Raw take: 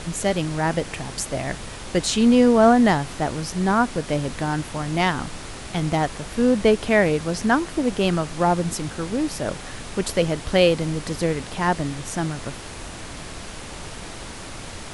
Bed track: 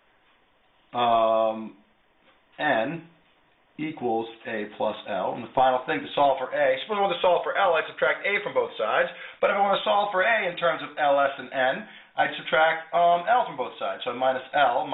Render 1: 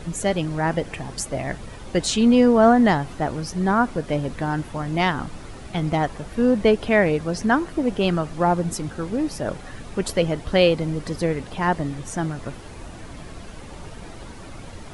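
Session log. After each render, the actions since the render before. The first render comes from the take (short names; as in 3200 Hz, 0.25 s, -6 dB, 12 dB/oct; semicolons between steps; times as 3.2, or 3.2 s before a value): denoiser 10 dB, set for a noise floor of -36 dBFS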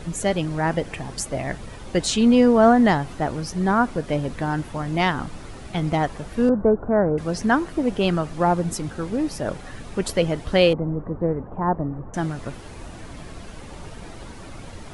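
6.49–7.18 Chebyshev low-pass 1500 Hz, order 5; 10.73–12.14 inverse Chebyshev low-pass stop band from 6700 Hz, stop band 80 dB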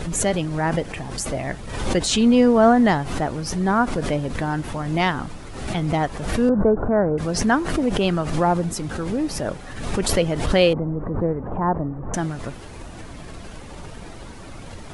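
backwards sustainer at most 53 dB/s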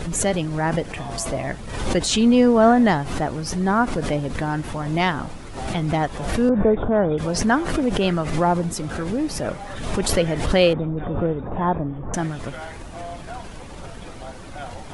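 add bed track -16 dB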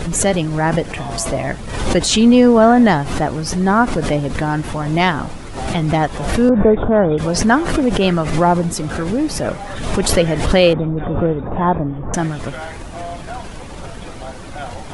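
gain +5.5 dB; limiter -1 dBFS, peak gain reduction 2.5 dB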